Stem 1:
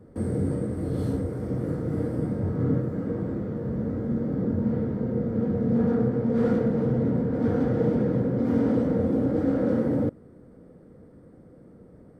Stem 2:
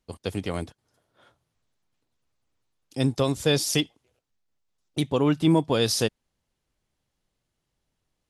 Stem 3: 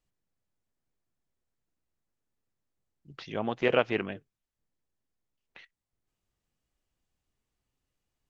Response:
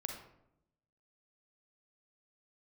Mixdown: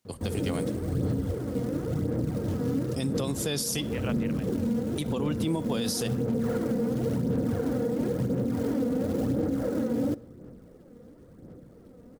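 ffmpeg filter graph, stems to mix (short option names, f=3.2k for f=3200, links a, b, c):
-filter_complex "[0:a]acrusher=bits=6:mode=log:mix=0:aa=0.000001,aphaser=in_gain=1:out_gain=1:delay=4.2:decay=0.47:speed=0.96:type=sinusoidal,adelay=50,volume=-2.5dB,asplit=2[a][b];[b]volume=-15dB[c];[1:a]highpass=f=88:w=0.5412,highpass=f=88:w=1.3066,highshelf=f=6.9k:g=10.5,volume=-1.5dB,asplit=3[d][e][f];[e]volume=-16dB[g];[2:a]highpass=520,adelay=300,volume=-3dB[h];[f]apad=whole_len=379016[i];[h][i]sidechaincompress=threshold=-27dB:ratio=8:attack=16:release=1020[j];[3:a]atrim=start_sample=2205[k];[c][g]amix=inputs=2:normalize=0[l];[l][k]afir=irnorm=-1:irlink=0[m];[a][d][j][m]amix=inputs=4:normalize=0,alimiter=limit=-19.5dB:level=0:latency=1:release=119"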